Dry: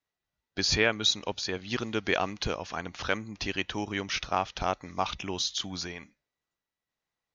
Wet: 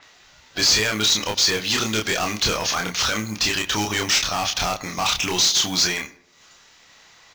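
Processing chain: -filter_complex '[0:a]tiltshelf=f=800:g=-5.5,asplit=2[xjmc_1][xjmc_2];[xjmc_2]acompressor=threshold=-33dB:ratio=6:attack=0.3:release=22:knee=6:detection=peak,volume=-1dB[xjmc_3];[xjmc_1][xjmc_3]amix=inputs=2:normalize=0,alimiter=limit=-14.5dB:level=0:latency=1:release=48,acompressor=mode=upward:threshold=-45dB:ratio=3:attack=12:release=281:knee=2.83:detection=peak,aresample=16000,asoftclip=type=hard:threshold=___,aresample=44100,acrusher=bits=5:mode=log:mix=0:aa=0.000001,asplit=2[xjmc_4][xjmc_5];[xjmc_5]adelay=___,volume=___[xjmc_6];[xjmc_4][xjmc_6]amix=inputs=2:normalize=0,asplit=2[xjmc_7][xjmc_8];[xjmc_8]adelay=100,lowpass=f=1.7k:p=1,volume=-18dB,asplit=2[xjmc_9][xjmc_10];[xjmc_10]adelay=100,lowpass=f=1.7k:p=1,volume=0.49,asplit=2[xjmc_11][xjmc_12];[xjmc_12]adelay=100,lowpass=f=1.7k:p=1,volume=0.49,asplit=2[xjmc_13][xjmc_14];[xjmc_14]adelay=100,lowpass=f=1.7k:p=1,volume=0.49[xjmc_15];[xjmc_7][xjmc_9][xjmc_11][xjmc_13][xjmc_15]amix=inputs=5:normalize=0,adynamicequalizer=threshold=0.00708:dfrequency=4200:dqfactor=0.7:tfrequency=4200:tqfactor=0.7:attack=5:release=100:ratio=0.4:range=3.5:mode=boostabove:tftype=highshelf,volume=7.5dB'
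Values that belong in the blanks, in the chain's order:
-27.5dB, 28, -3.5dB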